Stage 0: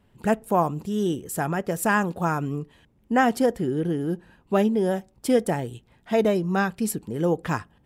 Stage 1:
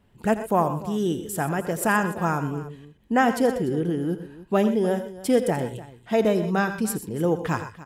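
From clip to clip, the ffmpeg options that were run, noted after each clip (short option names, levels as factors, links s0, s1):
-af "aecho=1:1:84|123|125|294:0.211|0.188|0.141|0.141"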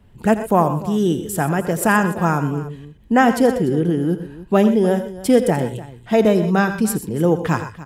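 -filter_complex "[0:a]lowshelf=f=120:g=11,acrossover=split=120[s0][s1];[s0]acompressor=threshold=0.00501:ratio=6[s2];[s2][s1]amix=inputs=2:normalize=0,volume=1.78"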